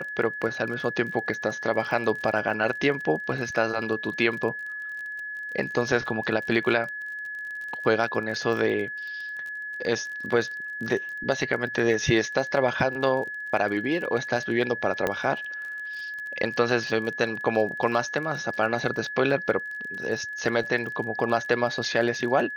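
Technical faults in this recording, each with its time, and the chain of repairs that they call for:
surface crackle 31 per second −34 dBFS
whistle 1,700 Hz −32 dBFS
0:15.07: click −11 dBFS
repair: click removal
notch filter 1,700 Hz, Q 30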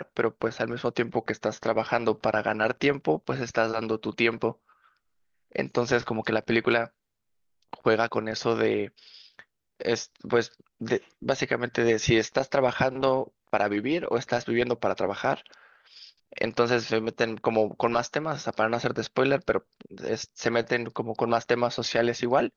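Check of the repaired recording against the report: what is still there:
none of them is left

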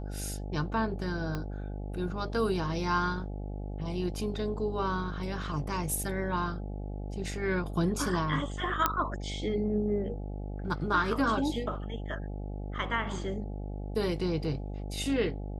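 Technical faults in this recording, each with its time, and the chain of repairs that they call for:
mains buzz 50 Hz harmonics 17 −37 dBFS
0:01.35: click −21 dBFS
0:08.86: click −10 dBFS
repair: click removal
hum removal 50 Hz, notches 17

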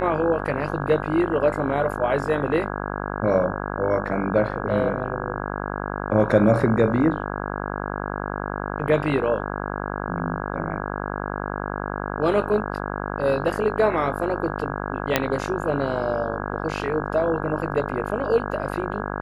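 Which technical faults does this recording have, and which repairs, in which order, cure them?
mains buzz 50 Hz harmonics 33 −29 dBFS
0:15.16: click −3 dBFS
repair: click removal
hum removal 50 Hz, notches 33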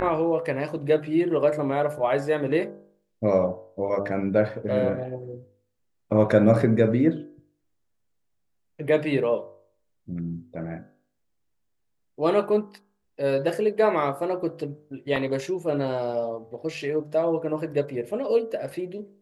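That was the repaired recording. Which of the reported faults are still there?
none of them is left

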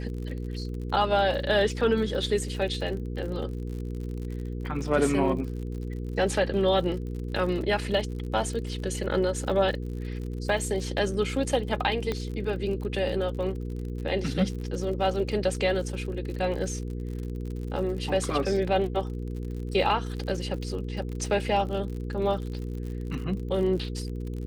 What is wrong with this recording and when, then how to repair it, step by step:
surface crackle 54 per second −35 dBFS
mains hum 60 Hz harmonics 8 −33 dBFS
0:12.12: click −16 dBFS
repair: click removal
hum removal 60 Hz, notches 8

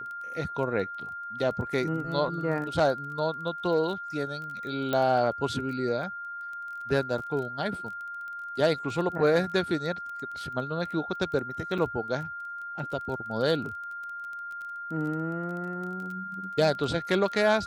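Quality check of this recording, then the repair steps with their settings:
surface crackle 20 per second −36 dBFS
whistle 1,400 Hz −35 dBFS
0:04.93: click −15 dBFS
0:11.78: drop-out 4.4 ms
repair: click removal
notch filter 1,400 Hz, Q 30
repair the gap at 0:11.78, 4.4 ms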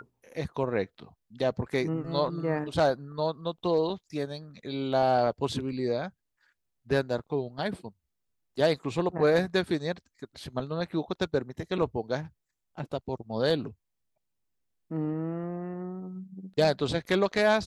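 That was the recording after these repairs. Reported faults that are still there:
0:04.93: click

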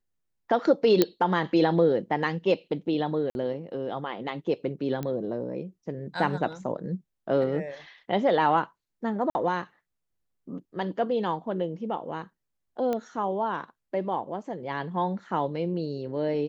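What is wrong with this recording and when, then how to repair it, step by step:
0:01.02: click −6 dBFS
0:03.30–0:03.35: drop-out 51 ms
0:05.03: click −19 dBFS
0:09.30–0:09.35: drop-out 50 ms
0:12.93: click −17 dBFS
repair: click removal
repair the gap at 0:03.30, 51 ms
repair the gap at 0:09.30, 50 ms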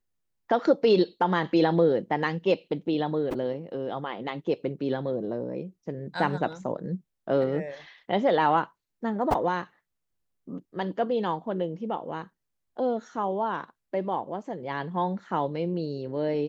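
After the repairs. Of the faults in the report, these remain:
0:12.93: click

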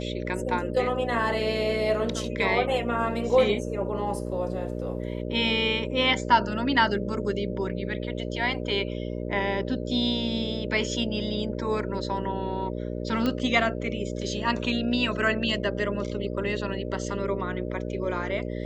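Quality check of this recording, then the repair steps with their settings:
mains buzz 60 Hz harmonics 10 −32 dBFS
0:13.26: click −14 dBFS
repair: click removal
hum removal 60 Hz, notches 10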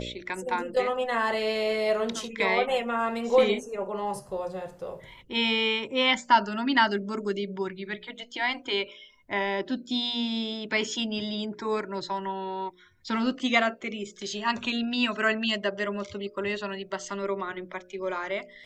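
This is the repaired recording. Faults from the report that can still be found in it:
none of them is left

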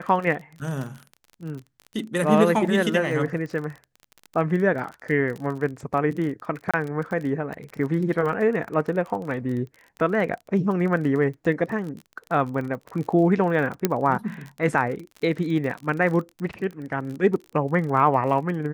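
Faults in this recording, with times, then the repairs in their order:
surface crackle 35 per second −31 dBFS
0:06.71–0:06.74: drop-out 26 ms
0:13.85: click −5 dBFS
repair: click removal
repair the gap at 0:06.71, 26 ms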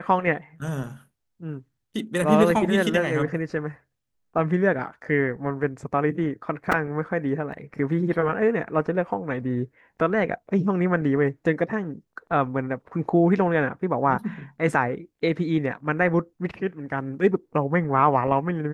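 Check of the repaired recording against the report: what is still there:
none of them is left

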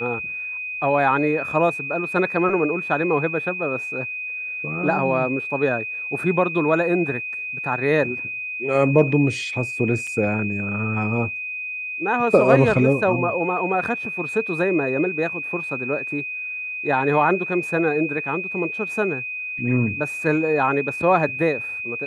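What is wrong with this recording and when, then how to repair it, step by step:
whistle 2,500 Hz −27 dBFS
0:10.07: drop-out 4.3 ms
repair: notch filter 2,500 Hz, Q 30
repair the gap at 0:10.07, 4.3 ms

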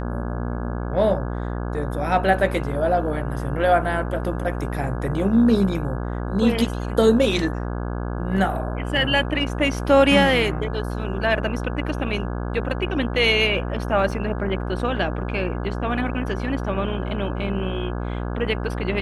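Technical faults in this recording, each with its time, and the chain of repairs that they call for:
mains buzz 60 Hz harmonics 28 −27 dBFS
0:14.11: drop-out 3.6 ms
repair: hum removal 60 Hz, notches 28
repair the gap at 0:14.11, 3.6 ms

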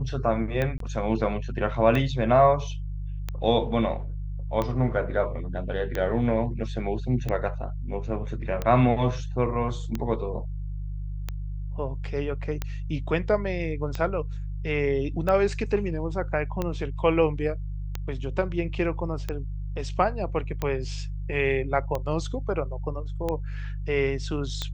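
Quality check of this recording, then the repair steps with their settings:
mains hum 50 Hz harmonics 3 −32 dBFS
scratch tick 45 rpm −15 dBFS
0:00.78–0:00.80: drop-out 23 ms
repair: click removal
hum removal 50 Hz, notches 3
repair the gap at 0:00.78, 23 ms

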